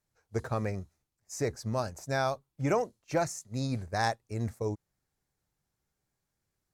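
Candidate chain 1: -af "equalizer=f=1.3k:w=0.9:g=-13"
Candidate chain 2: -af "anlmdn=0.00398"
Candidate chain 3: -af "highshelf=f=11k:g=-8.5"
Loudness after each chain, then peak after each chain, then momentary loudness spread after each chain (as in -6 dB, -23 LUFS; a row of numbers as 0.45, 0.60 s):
-36.0, -33.0, -33.5 LUFS; -20.5, -15.5, -16.0 dBFS; 7, 8, 8 LU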